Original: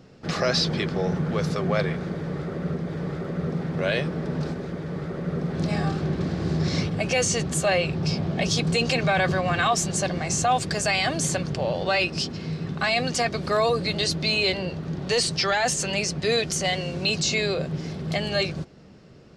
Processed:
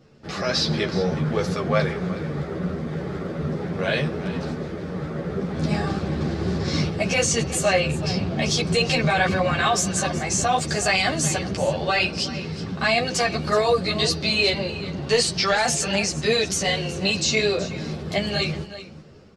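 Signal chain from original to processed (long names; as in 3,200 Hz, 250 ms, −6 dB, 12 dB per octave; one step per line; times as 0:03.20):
hum removal 172.2 Hz, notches 36
automatic gain control gain up to 5.5 dB
single-tap delay 373 ms −15 dB
string-ensemble chorus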